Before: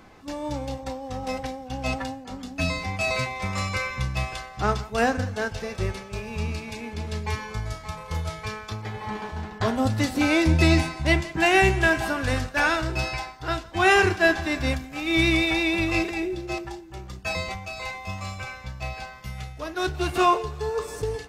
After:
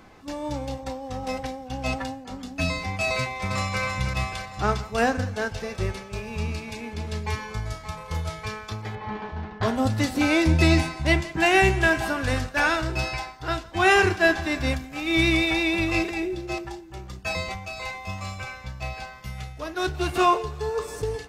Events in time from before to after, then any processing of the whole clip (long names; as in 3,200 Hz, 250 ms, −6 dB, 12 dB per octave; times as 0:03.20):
0:03.18–0:03.81: delay throw 320 ms, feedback 55%, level −6 dB
0:08.95–0:09.63: high-frequency loss of the air 180 metres